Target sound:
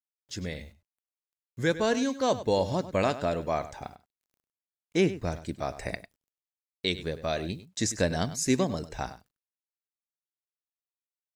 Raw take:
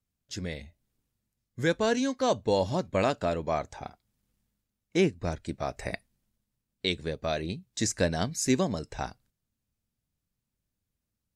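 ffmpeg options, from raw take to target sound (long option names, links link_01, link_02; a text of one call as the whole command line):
ffmpeg -i in.wav -filter_complex "[0:a]acrusher=bits=10:mix=0:aa=0.000001,asplit=2[link_01][link_02];[link_02]adelay=99.13,volume=-14dB,highshelf=frequency=4000:gain=-2.23[link_03];[link_01][link_03]amix=inputs=2:normalize=0" out.wav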